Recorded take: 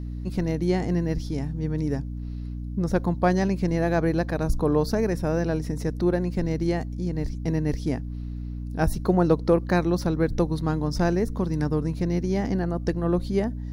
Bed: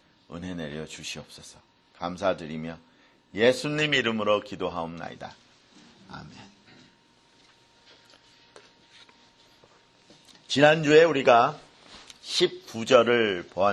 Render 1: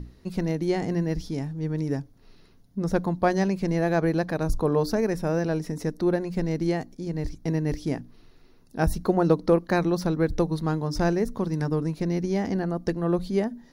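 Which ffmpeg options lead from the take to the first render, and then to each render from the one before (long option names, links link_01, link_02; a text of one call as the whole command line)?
ffmpeg -i in.wav -af "bandreject=frequency=60:width_type=h:width=6,bandreject=frequency=120:width_type=h:width=6,bandreject=frequency=180:width_type=h:width=6,bandreject=frequency=240:width_type=h:width=6,bandreject=frequency=300:width_type=h:width=6" out.wav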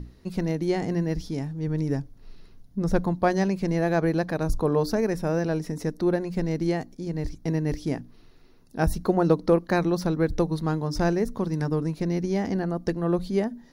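ffmpeg -i in.wav -filter_complex "[0:a]asettb=1/sr,asplit=3[link_01][link_02][link_03];[link_01]atrim=end=1.674[link_04];[link_02]atrim=start=1.67:end=3.13,asetpts=PTS-STARTPTS,afade=type=in:duration=0.004:curve=qsin,afade=type=out:start_time=1.456:duration=0.004:curve=qsin,lowshelf=frequency=68:gain=11[link_05];[link_03]atrim=start=3.126[link_06];[link_04][link_05]acrossfade=duration=0.004:curve1=hsin:curve2=qsin[link_07];[link_07][link_06]acrossfade=duration=0.004:curve1=qsin:curve2=hsin" out.wav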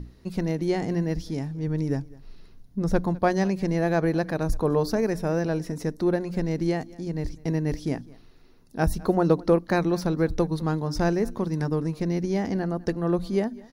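ffmpeg -i in.wav -af "aecho=1:1:204:0.075" out.wav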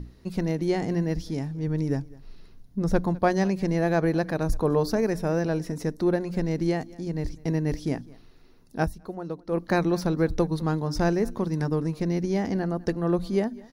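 ffmpeg -i in.wav -filter_complex "[0:a]asplit=3[link_01][link_02][link_03];[link_01]atrim=end=8.94,asetpts=PTS-STARTPTS,afade=type=out:start_time=8.82:duration=0.12:curve=qua:silence=0.211349[link_04];[link_02]atrim=start=8.94:end=9.47,asetpts=PTS-STARTPTS,volume=-13.5dB[link_05];[link_03]atrim=start=9.47,asetpts=PTS-STARTPTS,afade=type=in:duration=0.12:curve=qua:silence=0.211349[link_06];[link_04][link_05][link_06]concat=n=3:v=0:a=1" out.wav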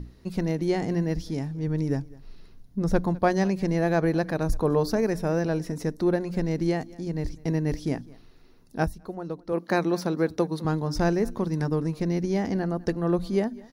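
ffmpeg -i in.wav -filter_complex "[0:a]asettb=1/sr,asplit=3[link_01][link_02][link_03];[link_01]atrim=end=9.524[link_04];[link_02]atrim=start=9.52:end=10.65,asetpts=PTS-STARTPTS,afade=type=in:duration=0.004:curve=qsin,afade=type=out:start_time=1.126:duration=0.004:curve=qsin,highpass=190[link_05];[link_03]atrim=start=10.646[link_06];[link_04][link_05]acrossfade=duration=0.004:curve1=hsin:curve2=qsin[link_07];[link_07][link_06]acrossfade=duration=0.004:curve1=qsin:curve2=hsin" out.wav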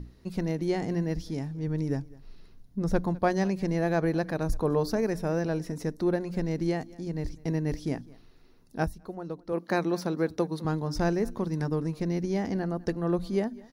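ffmpeg -i in.wav -af "volume=-3dB" out.wav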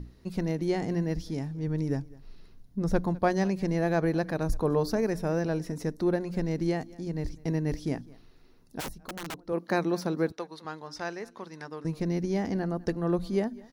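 ffmpeg -i in.wav -filter_complex "[0:a]asplit=3[link_01][link_02][link_03];[link_01]afade=type=out:start_time=8.79:duration=0.02[link_04];[link_02]aeval=exprs='(mod(35.5*val(0)+1,2)-1)/35.5':channel_layout=same,afade=type=in:start_time=8.79:duration=0.02,afade=type=out:start_time=9.36:duration=0.02[link_05];[link_03]afade=type=in:start_time=9.36:duration=0.02[link_06];[link_04][link_05][link_06]amix=inputs=3:normalize=0,asettb=1/sr,asplit=3[link_07][link_08][link_09];[link_07]atrim=end=10.324[link_10];[link_08]atrim=start=10.32:end=11.85,asetpts=PTS-STARTPTS,afade=type=in:duration=0.004:curve=qsin,afade=type=out:start_time=1.526:duration=0.004:curve=qsin,bandpass=frequency=2400:width_type=q:width=0.54[link_11];[link_09]atrim=start=11.846[link_12];[link_10][link_11]acrossfade=duration=0.004:curve1=hsin:curve2=qsin[link_13];[link_13][link_12]acrossfade=duration=0.004:curve1=qsin:curve2=hsin" out.wav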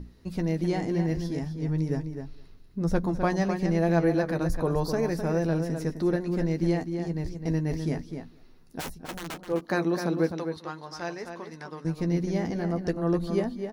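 ffmpeg -i in.wav -filter_complex "[0:a]asplit=2[link_01][link_02];[link_02]adelay=12,volume=-8dB[link_03];[link_01][link_03]amix=inputs=2:normalize=0,asplit=2[link_04][link_05];[link_05]adelay=256.6,volume=-7dB,highshelf=frequency=4000:gain=-5.77[link_06];[link_04][link_06]amix=inputs=2:normalize=0" out.wav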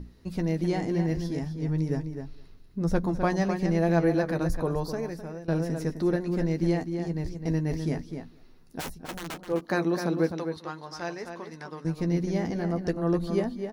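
ffmpeg -i in.wav -filter_complex "[0:a]asplit=2[link_01][link_02];[link_01]atrim=end=5.48,asetpts=PTS-STARTPTS,afade=type=out:start_time=4.48:duration=1:silence=0.11885[link_03];[link_02]atrim=start=5.48,asetpts=PTS-STARTPTS,afade=type=in:duration=0.004:curve=hsin:silence=0.11885[link_04];[link_03][link_04]concat=n=2:v=0:a=1" out.wav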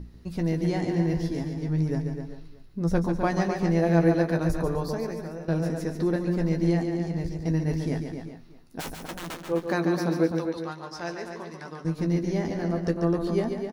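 ffmpeg -i in.wav -filter_complex "[0:a]asplit=2[link_01][link_02];[link_02]adelay=18,volume=-12dB[link_03];[link_01][link_03]amix=inputs=2:normalize=0,aecho=1:1:142|374:0.447|0.126" out.wav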